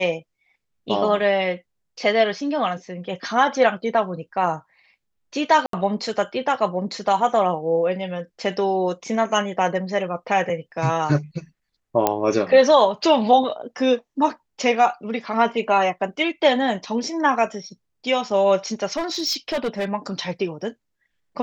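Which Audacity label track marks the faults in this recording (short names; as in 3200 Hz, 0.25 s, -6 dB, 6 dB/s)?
5.660000	5.730000	gap 73 ms
12.070000	12.070000	pop -4 dBFS
18.960000	19.850000	clipped -19.5 dBFS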